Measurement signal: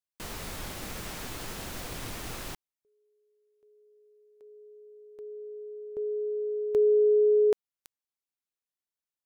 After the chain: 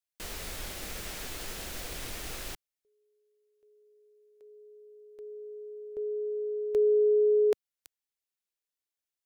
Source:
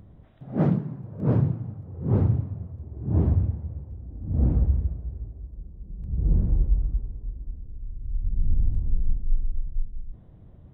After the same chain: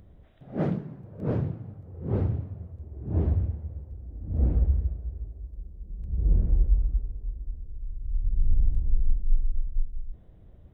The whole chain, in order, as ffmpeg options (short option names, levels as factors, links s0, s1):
-af "equalizer=f=125:t=o:w=1:g=-8,equalizer=f=250:t=o:w=1:g=-5,equalizer=f=1000:t=o:w=1:g=-6,volume=1.12"